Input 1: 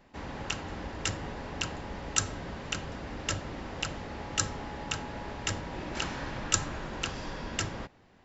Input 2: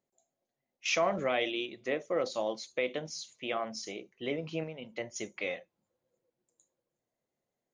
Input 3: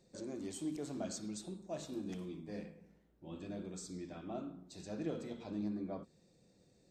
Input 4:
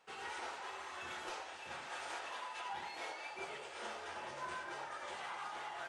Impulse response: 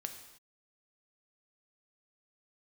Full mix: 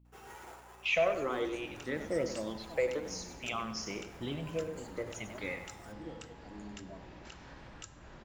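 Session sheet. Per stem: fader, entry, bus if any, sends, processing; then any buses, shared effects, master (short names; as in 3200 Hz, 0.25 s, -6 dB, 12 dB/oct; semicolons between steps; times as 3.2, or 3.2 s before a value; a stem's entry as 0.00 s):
-11.0 dB, 1.30 s, send -5 dB, no echo send, compressor 4:1, threshold -41 dBFS, peak gain reduction 18 dB
+0.5 dB, 0.00 s, no send, echo send -10 dB, phaser stages 6, 0.57 Hz, lowest notch 170–1100 Hz; low shelf 140 Hz +11.5 dB
-11.5 dB, 1.00 s, no send, no echo send, moving spectral ripple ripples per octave 1.5, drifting -0.54 Hz, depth 21 dB
-6.5 dB, 0.05 s, send -11 dB, no echo send, tilt -2.5 dB/oct; sample-rate reducer 8400 Hz, jitter 0%; auto duck -7 dB, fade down 0.40 s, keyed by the second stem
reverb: on, pre-delay 3 ms
echo: feedback echo 96 ms, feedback 41%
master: hum 60 Hz, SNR 24 dB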